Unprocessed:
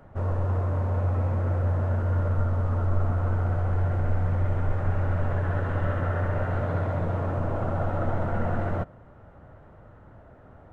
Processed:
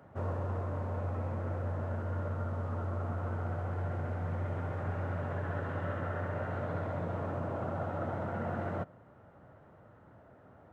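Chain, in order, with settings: high-pass 110 Hz 12 dB/octave; gain riding; trim -6 dB

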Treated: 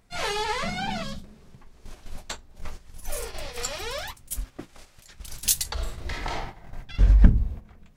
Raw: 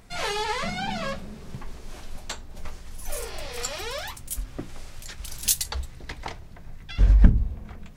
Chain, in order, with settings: 1.36–1.85 s: compression 8:1, threshold -34 dBFS, peak gain reduction 6.5 dB; 5.73–6.76 s: reverb throw, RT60 0.94 s, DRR -4.5 dB; gate -34 dBFS, range -10 dB; 1.03–1.24 s: time-frequency box 300–3000 Hz -11 dB; 4.44–5.09 s: bass shelf 210 Hz -10 dB

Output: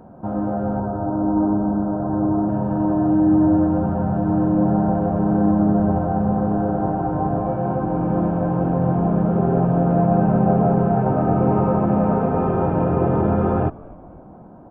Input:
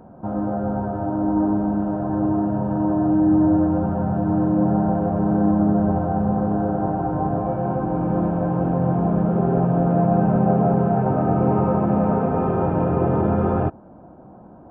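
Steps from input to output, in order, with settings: 0.80–2.49 s: steep low-pass 1.6 kHz 48 dB/octave; on a send: frequency-shifting echo 251 ms, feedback 53%, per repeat -84 Hz, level -22.5 dB; on the sum: trim +1 dB

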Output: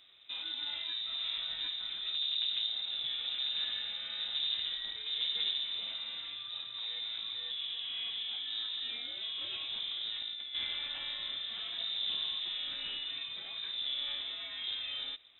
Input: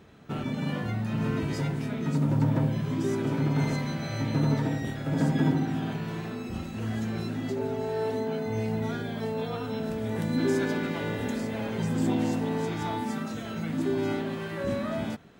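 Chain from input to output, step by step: 9.41–10.55 s: compressor with a negative ratio -31 dBFS, ratio -1; one-sided clip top -30.5 dBFS; frequency inversion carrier 3.8 kHz; trim -7.5 dB

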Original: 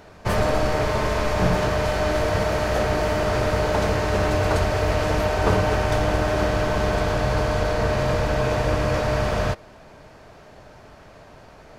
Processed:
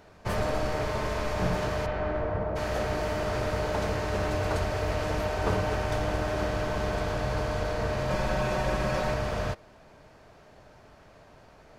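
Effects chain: 1.85–2.55 s: low-pass 2.7 kHz -> 1 kHz 12 dB/octave; 8.10–9.14 s: comb 5.4 ms, depth 94%; trim -7.5 dB

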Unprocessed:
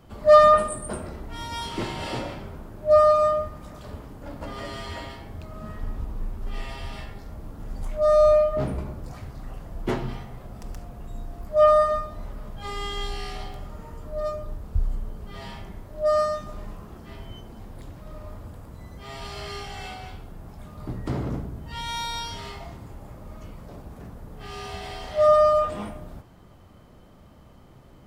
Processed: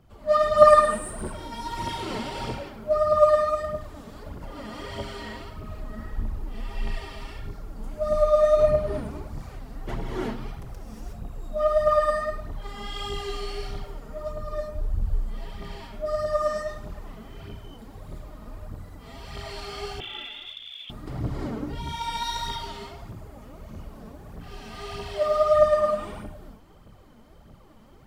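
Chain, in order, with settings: gated-style reverb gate 390 ms rising, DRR -6.5 dB; 20.00–20.90 s: frequency inversion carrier 3.5 kHz; phaser 1.6 Hz, delay 4.8 ms, feedback 53%; trim -9.5 dB

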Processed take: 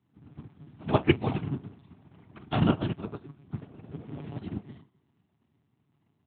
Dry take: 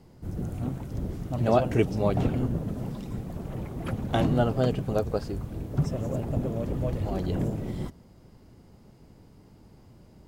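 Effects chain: treble shelf 2.9 kHz +4 dB; feedback delay 317 ms, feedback 47%, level -24 dB; on a send at -8 dB: reverberation RT60 0.45 s, pre-delay 46 ms; on the sum: frequency shift -50 Hz; harmony voices -4 st -11 dB; monotone LPC vocoder at 8 kHz 140 Hz; granular stretch 0.61×, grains 50 ms; high-pass 100 Hz 24 dB/octave; peaking EQ 530 Hz -13 dB 0.54 oct; upward expansion 2.5:1, over -38 dBFS; trim +7.5 dB

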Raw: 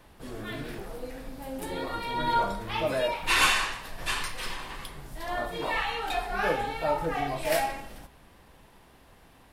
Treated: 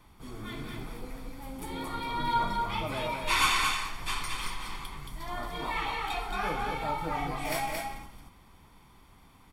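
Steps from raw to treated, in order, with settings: comb 0.9 ms, depth 55%; on a send: delay 224 ms -4 dB; on the sum: trim -4.5 dB

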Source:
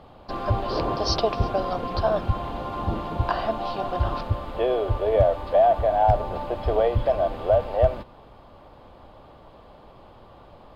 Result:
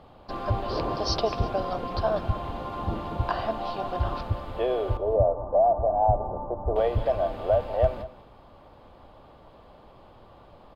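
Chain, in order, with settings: 4.97–6.76 s: steep low-pass 1.1 kHz 36 dB/octave; delay 196 ms -16 dB; trim -3 dB

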